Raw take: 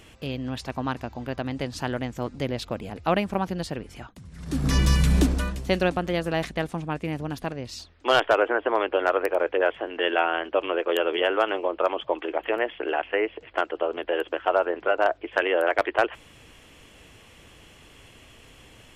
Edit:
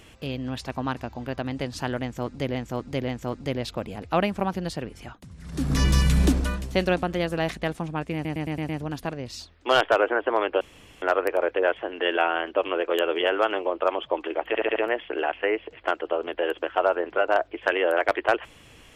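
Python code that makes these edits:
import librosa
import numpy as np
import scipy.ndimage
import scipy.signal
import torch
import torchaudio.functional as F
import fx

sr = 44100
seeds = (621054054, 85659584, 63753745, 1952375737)

y = fx.edit(x, sr, fx.repeat(start_s=2.02, length_s=0.53, count=3),
    fx.stutter(start_s=7.08, slice_s=0.11, count=6),
    fx.insert_room_tone(at_s=9.0, length_s=0.41),
    fx.stutter(start_s=12.46, slice_s=0.07, count=5), tone=tone)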